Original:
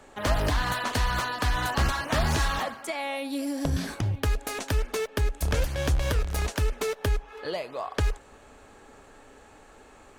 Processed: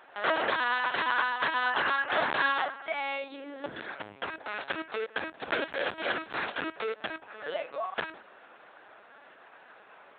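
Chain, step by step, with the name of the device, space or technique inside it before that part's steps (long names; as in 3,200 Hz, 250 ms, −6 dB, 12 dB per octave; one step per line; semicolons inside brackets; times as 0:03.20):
mains-hum notches 60/120/180/240/300/360/420/480 Hz
0:03.33–0:04.56: high-frequency loss of the air 96 metres
talking toy (linear-prediction vocoder at 8 kHz pitch kept; high-pass filter 480 Hz 12 dB per octave; parametric band 1,500 Hz +5 dB 0.55 octaves)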